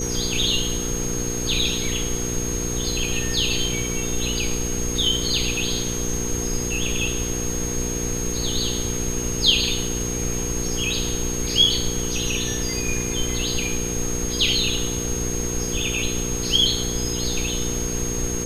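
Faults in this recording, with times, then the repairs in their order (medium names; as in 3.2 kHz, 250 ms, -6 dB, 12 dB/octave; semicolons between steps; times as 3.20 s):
hum 60 Hz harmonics 8 -29 dBFS
whine 6.5 kHz -28 dBFS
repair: de-hum 60 Hz, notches 8; band-stop 6.5 kHz, Q 30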